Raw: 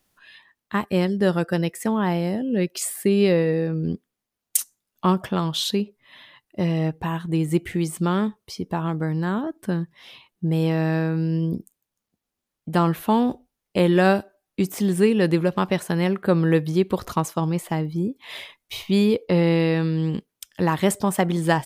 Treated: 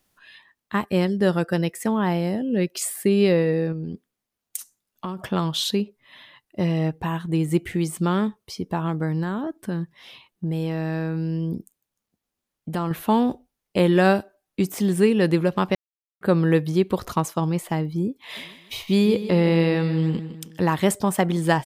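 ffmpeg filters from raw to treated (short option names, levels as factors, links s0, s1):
-filter_complex "[0:a]asettb=1/sr,asplit=3[s0][s1][s2];[s0]atrim=end=3.724[s3];[s1]atrim=start=3.72:end=5.19,asetpts=PTS-STARTPTS,afade=t=in:d=0.004:c=qsin,afade=t=out:st=1.466:d=0.004:c=qsin,acompressor=threshold=0.0447:ratio=6:attack=3.2:release=140:knee=1:detection=peak[s4];[s2]atrim=start=5.186[s5];[s3][s4]acrossfade=d=0.004:c1=hsin:c2=qsin[s6];[s6][s5]acrossfade=d=0.004:c1=qsin:c2=hsin,asettb=1/sr,asplit=3[s7][s8][s9];[s7]atrim=end=9.234[s10];[s8]atrim=start=9.23:end=12.91,asetpts=PTS-STARTPTS,afade=t=in:d=0.004:c=qsin,afade=t=out:st=3.676:d=0.004:c=qsin,acompressor=threshold=0.0708:ratio=3:attack=3.2:release=140:knee=1:detection=peak[s11];[s9]atrim=start=12.906[s12];[s10][s11]acrossfade=d=0.004:c1=hsin:c2=qsin[s13];[s13][s12]acrossfade=d=0.004:c1=qsin:c2=hsin,asplit=3[s14][s15][s16];[s14]afade=t=out:st=18.36:d=0.02[s17];[s15]aecho=1:1:156|312|468|624:0.251|0.111|0.0486|0.0214,afade=t=in:st=18.36:d=0.02,afade=t=out:st=20.57:d=0.02[s18];[s16]afade=t=in:st=20.57:d=0.02[s19];[s17][s18][s19]amix=inputs=3:normalize=0,asplit=3[s20][s21][s22];[s20]atrim=end=15.75,asetpts=PTS-STARTPTS,afade=t=out:st=15.746:d=0.004:c=hsin[s23];[s21]atrim=start=15.75:end=16.21,asetpts=PTS-STARTPTS,volume=0[s24];[s22]atrim=start=16.21,asetpts=PTS-STARTPTS,afade=t=in:d=0.004:c=hsin[s25];[s23][s24][s25]concat=n=3:v=0:a=1"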